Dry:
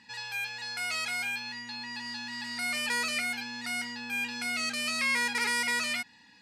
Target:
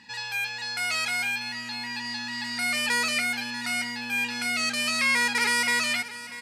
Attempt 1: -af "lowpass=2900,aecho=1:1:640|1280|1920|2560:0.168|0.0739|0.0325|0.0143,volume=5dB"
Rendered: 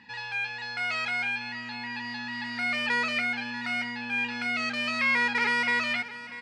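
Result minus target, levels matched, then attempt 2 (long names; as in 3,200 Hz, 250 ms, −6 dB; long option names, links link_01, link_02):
4,000 Hz band −4.0 dB
-af "aecho=1:1:640|1280|1920|2560:0.168|0.0739|0.0325|0.0143,volume=5dB"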